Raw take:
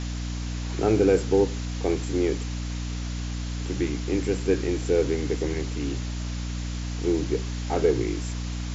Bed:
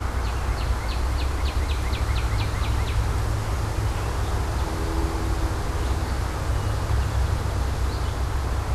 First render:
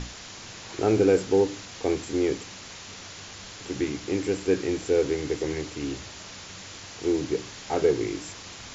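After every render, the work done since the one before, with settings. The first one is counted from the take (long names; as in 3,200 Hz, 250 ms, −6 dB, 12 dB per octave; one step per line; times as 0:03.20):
mains-hum notches 60/120/180/240/300 Hz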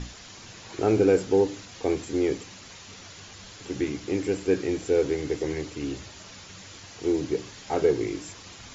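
broadband denoise 6 dB, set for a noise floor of −43 dBFS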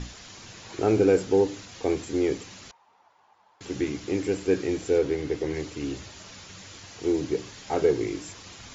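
0:02.71–0:03.61: resonant band-pass 880 Hz, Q 6.1
0:04.98–0:05.54: high-frequency loss of the air 75 metres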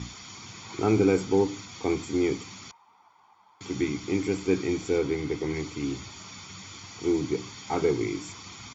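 high-pass filter 95 Hz
comb filter 0.9 ms, depth 61%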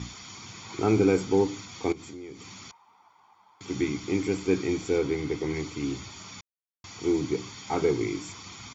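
0:01.92–0:03.68: downward compressor 5 to 1, threshold −40 dBFS
0:06.41–0:06.84: silence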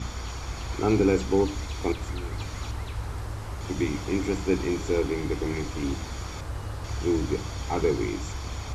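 mix in bed −9.5 dB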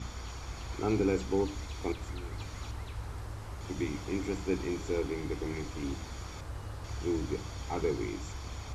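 level −7 dB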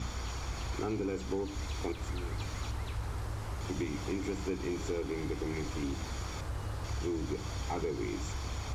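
downward compressor 5 to 1, threshold −34 dBFS, peak gain reduction 9.5 dB
leveller curve on the samples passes 1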